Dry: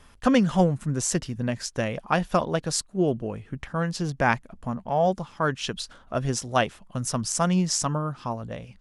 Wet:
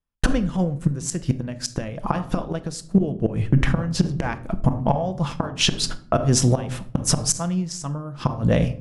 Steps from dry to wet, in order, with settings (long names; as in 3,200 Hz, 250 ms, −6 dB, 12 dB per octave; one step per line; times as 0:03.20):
noise gate −41 dBFS, range −54 dB
low-shelf EQ 330 Hz +7 dB
0:05.45–0:07.32: downward compressor 4 to 1, threshold −26 dBFS, peak gain reduction 10 dB
gate with flip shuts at −16 dBFS, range −24 dB
convolution reverb RT60 0.55 s, pre-delay 6 ms, DRR 10 dB
boost into a limiter +22 dB
level −6 dB